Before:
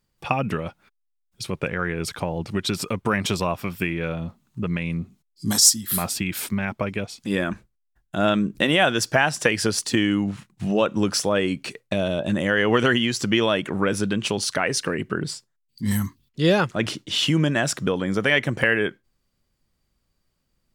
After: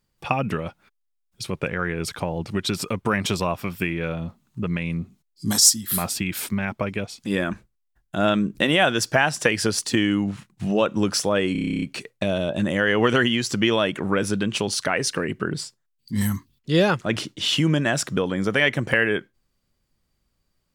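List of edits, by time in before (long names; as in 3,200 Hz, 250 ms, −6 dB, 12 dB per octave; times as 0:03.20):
0:11.52: stutter 0.03 s, 11 plays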